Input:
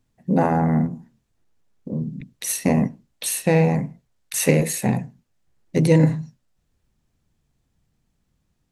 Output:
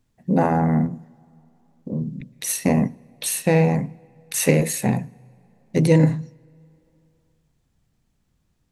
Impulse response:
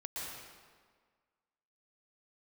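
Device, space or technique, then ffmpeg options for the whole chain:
ducked reverb: -filter_complex "[0:a]asplit=3[link_01][link_02][link_03];[1:a]atrim=start_sample=2205[link_04];[link_02][link_04]afir=irnorm=-1:irlink=0[link_05];[link_03]apad=whole_len=384159[link_06];[link_05][link_06]sidechaincompress=threshold=-38dB:ratio=5:attack=16:release=649,volume=-12dB[link_07];[link_01][link_07]amix=inputs=2:normalize=0"

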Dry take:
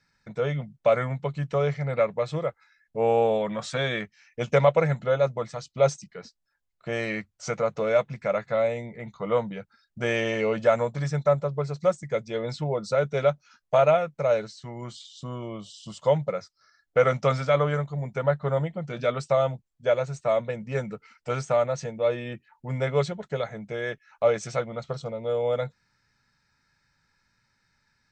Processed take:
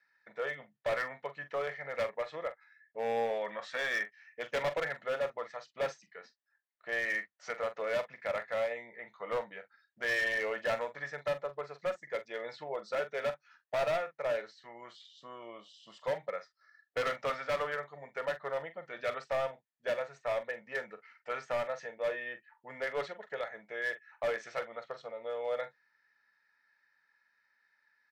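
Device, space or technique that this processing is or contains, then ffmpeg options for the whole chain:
megaphone: -filter_complex "[0:a]highpass=540,lowpass=3400,equalizer=frequency=1800:width_type=o:width=0.23:gain=12,asoftclip=type=hard:threshold=-22dB,asplit=2[link_01][link_02];[link_02]adelay=43,volume=-12dB[link_03];[link_01][link_03]amix=inputs=2:normalize=0,volume=-6dB"

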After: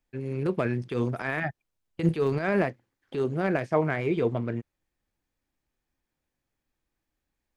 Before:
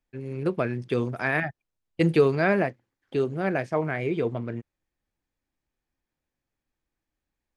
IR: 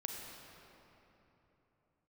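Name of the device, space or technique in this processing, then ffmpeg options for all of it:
de-esser from a sidechain: -filter_complex "[0:a]asplit=2[link_01][link_02];[link_02]highpass=frequency=4500:width=0.5412,highpass=frequency=4500:width=1.3066,apad=whole_len=333700[link_03];[link_01][link_03]sidechaincompress=threshold=-59dB:ratio=5:attack=3:release=23,volume=2dB"

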